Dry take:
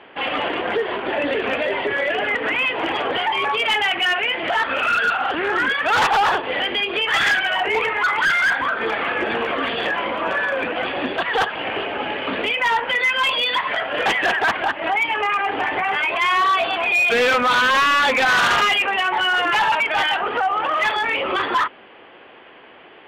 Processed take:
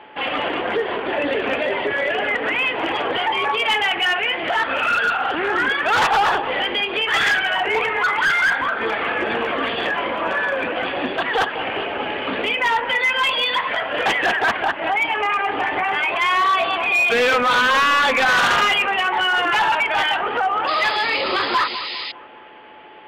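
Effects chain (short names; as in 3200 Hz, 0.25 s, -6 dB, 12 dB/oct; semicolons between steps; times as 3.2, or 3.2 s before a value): whine 860 Hz -45 dBFS; dark delay 0.202 s, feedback 47%, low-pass 1400 Hz, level -11 dB; painted sound noise, 20.67–22.12, 1800–5100 Hz -29 dBFS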